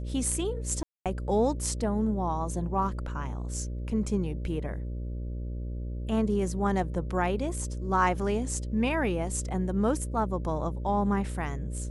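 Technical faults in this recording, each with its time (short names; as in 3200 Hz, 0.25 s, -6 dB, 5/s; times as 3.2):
buzz 60 Hz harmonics 10 -34 dBFS
0.83–1.06 gap 0.227 s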